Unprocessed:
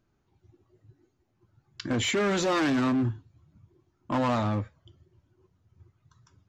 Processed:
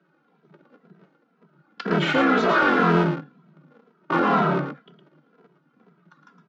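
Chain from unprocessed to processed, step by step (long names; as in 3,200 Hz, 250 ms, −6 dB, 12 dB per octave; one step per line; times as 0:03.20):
sub-harmonics by changed cycles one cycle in 3, inverted
Butterworth high-pass 150 Hz 96 dB per octave
parametric band 1,400 Hz +12.5 dB 0.23 octaves
in parallel at −3 dB: downward compressor, threshold −34 dBFS, peak gain reduction 14.5 dB
on the sum: soft clipping −12 dBFS, distortion −24 dB
high-frequency loss of the air 270 metres
on a send: single-tap delay 112 ms −7.5 dB
on the sum: barber-pole flanger 2.7 ms −2 Hz
level +8 dB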